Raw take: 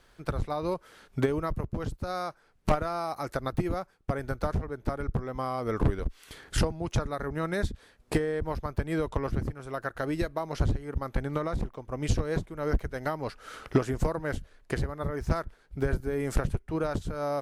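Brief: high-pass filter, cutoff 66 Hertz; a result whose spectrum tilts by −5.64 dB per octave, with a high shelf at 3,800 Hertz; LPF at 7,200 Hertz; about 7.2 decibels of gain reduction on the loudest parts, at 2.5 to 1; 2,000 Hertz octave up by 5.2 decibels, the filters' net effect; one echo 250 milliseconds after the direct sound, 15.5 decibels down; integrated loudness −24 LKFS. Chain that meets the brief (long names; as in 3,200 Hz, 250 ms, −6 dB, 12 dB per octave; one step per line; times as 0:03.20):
high-pass filter 66 Hz
low-pass filter 7,200 Hz
parametric band 2,000 Hz +8 dB
high-shelf EQ 3,800 Hz −5 dB
downward compressor 2.5 to 1, threshold −30 dBFS
single-tap delay 250 ms −15.5 dB
level +11 dB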